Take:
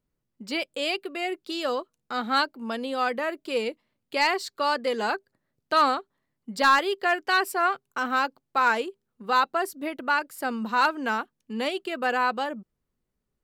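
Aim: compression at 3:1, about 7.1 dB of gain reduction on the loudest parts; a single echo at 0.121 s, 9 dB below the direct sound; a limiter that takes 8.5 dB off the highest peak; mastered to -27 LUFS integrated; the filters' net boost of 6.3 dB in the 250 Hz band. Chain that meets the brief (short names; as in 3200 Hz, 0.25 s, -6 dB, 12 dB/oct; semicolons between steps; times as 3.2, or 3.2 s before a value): bell 250 Hz +7.5 dB; compressor 3:1, threshold -25 dBFS; limiter -23.5 dBFS; echo 0.121 s -9 dB; gain +5.5 dB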